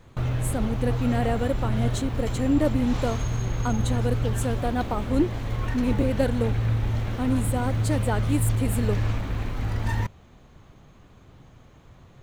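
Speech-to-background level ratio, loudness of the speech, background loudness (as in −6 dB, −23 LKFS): 0.0 dB, −28.0 LKFS, −28.0 LKFS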